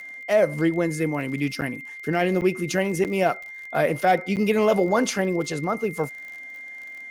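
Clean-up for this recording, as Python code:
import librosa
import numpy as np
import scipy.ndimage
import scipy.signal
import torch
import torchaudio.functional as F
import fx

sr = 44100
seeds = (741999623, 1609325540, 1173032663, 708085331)

y = fx.fix_declick_ar(x, sr, threshold=6.5)
y = fx.notch(y, sr, hz=2100.0, q=30.0)
y = fx.fix_interpolate(y, sr, at_s=(1.61, 2.41, 3.04, 4.36), length_ms=8.3)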